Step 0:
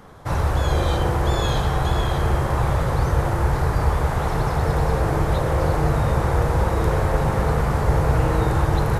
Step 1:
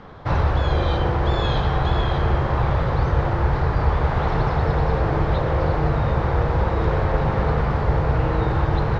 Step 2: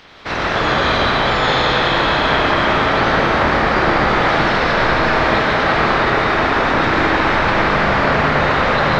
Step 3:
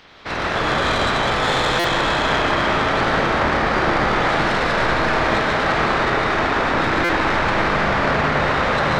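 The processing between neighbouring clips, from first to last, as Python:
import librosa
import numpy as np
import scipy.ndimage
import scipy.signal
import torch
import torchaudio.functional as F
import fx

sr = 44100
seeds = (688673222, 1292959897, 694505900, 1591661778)

y1 = fx.rider(x, sr, range_db=4, speed_s=0.5)
y1 = scipy.signal.sosfilt(scipy.signal.butter(4, 4400.0, 'lowpass', fs=sr, output='sos'), y1)
y2 = fx.spec_clip(y1, sr, under_db=28)
y2 = fx.rev_freeverb(y2, sr, rt60_s=5.0, hf_ratio=0.55, predelay_ms=80, drr_db=-5.5)
y2 = y2 * librosa.db_to_amplitude(-2.0)
y3 = fx.tracing_dist(y2, sr, depth_ms=0.042)
y3 = fx.buffer_glitch(y3, sr, at_s=(1.79, 7.04), block=256, repeats=8)
y3 = y3 * librosa.db_to_amplitude(-3.5)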